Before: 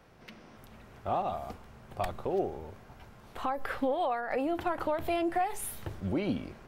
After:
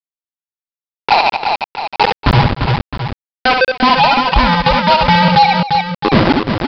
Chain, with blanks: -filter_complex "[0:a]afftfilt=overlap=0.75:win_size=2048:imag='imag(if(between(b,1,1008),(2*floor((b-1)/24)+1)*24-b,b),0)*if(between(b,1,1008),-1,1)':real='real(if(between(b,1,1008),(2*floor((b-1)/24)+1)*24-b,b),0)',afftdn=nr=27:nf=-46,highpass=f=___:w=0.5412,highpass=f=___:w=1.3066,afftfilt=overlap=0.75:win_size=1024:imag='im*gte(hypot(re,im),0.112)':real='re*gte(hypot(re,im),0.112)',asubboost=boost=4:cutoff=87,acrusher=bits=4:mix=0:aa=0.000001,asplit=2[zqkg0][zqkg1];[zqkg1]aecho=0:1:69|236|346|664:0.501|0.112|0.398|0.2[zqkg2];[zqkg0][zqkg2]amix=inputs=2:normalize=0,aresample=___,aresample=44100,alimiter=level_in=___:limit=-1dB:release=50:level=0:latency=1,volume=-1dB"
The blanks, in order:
41, 41, 11025, 23dB